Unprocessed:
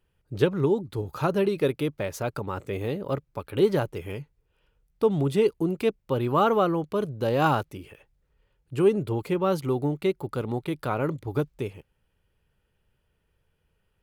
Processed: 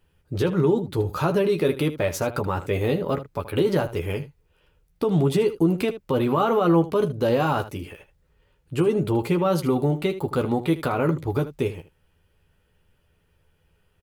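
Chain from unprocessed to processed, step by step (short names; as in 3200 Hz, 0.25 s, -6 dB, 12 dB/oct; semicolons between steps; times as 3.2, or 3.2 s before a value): limiter -20 dBFS, peak gain reduction 11.5 dB; on a send: early reflections 12 ms -6 dB, 78 ms -14 dB; on the sum: gain +6 dB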